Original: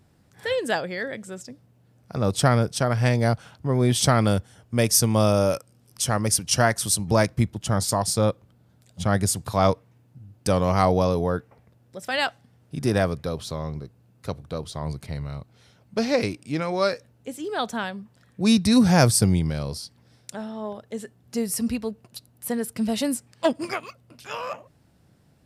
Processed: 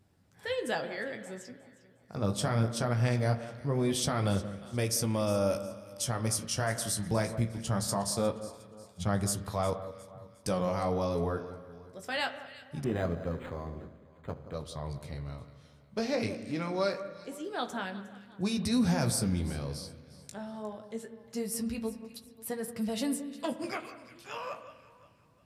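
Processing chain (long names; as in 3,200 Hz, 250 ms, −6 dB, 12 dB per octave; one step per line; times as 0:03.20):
brickwall limiter −12.5 dBFS, peak gain reduction 8 dB
flanger 0.22 Hz, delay 9.9 ms, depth 9.8 ms, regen −30%
on a send: delay that swaps between a low-pass and a high-pass 179 ms, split 1,500 Hz, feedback 61%, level −13 dB
on the sum: spring reverb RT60 1.5 s, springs 35 ms, chirp 40 ms, DRR 11.5 dB
0:12.84–0:14.54: linearly interpolated sample-rate reduction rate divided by 8×
level −4 dB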